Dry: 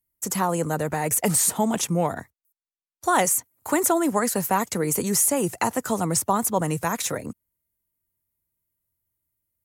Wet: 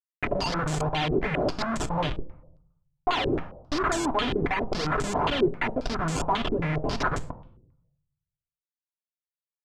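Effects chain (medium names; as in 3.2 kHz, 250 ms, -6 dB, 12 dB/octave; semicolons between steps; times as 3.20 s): expander on every frequency bin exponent 2; compression 2:1, threshold -29 dBFS, peak gain reduction 6 dB; decimation with a swept rate 16×, swing 100% 2.8 Hz; Schmitt trigger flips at -39.5 dBFS; on a send at -6.5 dB: reverberation RT60 0.80 s, pre-delay 3 ms; on the sum: step-sequenced low-pass 7.4 Hz 390–7500 Hz; trim +5 dB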